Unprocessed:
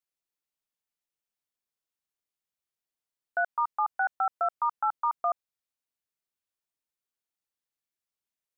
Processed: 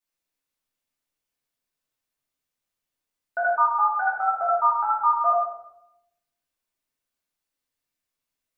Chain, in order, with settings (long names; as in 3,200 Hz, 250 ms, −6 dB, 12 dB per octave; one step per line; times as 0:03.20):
rectangular room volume 240 cubic metres, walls mixed, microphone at 2.6 metres
level −1.5 dB